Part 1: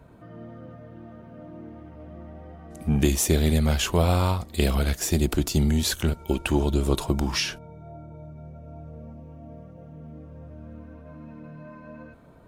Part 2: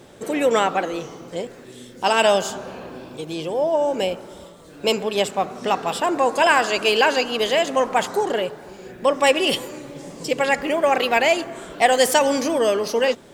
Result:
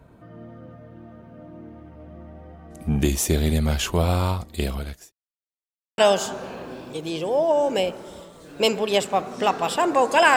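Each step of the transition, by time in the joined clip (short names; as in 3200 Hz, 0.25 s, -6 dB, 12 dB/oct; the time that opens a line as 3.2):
part 1
4.42–5.12 fade out linear
5.12–5.98 mute
5.98 switch to part 2 from 2.22 s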